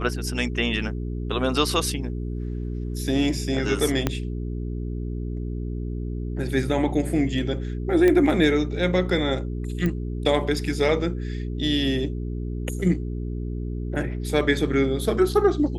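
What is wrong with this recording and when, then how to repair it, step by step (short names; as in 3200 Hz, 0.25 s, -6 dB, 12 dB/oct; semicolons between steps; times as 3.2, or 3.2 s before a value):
hum 60 Hz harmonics 7 -29 dBFS
4.07 pop -8 dBFS
8.08 pop -10 dBFS
9.86 pop -14 dBFS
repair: de-click; de-hum 60 Hz, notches 7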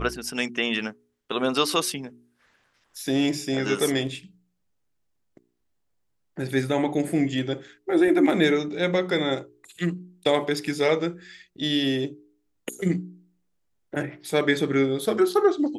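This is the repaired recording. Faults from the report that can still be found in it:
4.07 pop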